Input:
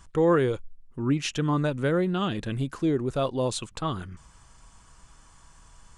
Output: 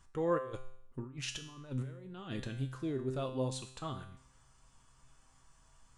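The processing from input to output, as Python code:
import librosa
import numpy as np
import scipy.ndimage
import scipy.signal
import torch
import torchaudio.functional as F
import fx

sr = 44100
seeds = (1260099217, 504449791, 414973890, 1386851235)

y = fx.over_compress(x, sr, threshold_db=-31.0, ratio=-0.5, at=(0.37, 2.49), fade=0.02)
y = fx.comb_fb(y, sr, f0_hz=130.0, decay_s=0.69, harmonics='all', damping=0.0, mix_pct=80)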